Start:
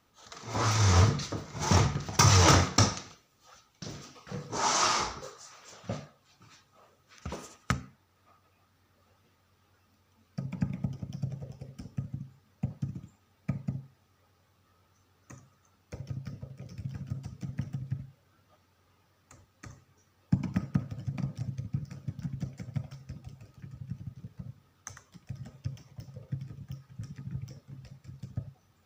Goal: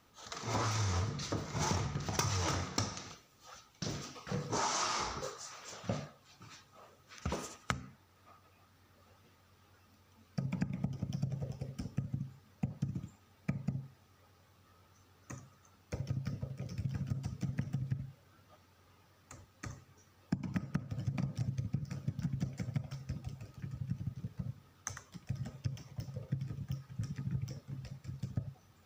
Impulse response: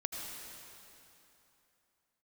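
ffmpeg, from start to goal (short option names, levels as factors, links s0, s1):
-af "acompressor=threshold=0.0224:ratio=20,volume=1.33"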